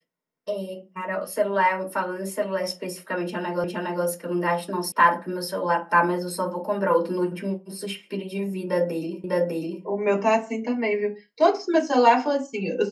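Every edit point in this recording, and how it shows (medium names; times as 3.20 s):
3.64 s: repeat of the last 0.41 s
4.92 s: sound stops dead
9.24 s: repeat of the last 0.6 s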